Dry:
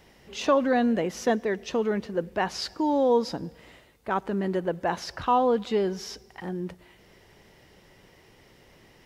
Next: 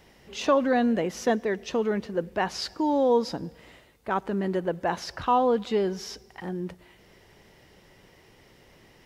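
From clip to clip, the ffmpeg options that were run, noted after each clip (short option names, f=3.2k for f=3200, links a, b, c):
-af anull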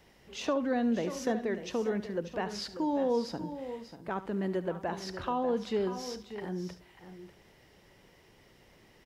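-filter_complex "[0:a]acrossover=split=440[a][b];[b]acompressor=threshold=-31dB:ratio=2[c];[a][c]amix=inputs=2:normalize=0,asplit=2[d][e];[e]aecho=0:1:72|591|639:0.178|0.266|0.112[f];[d][f]amix=inputs=2:normalize=0,volume=-5dB"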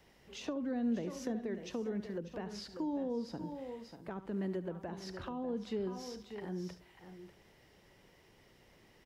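-filter_complex "[0:a]acrossover=split=380[a][b];[b]acompressor=threshold=-41dB:ratio=6[c];[a][c]amix=inputs=2:normalize=0,volume=-3.5dB"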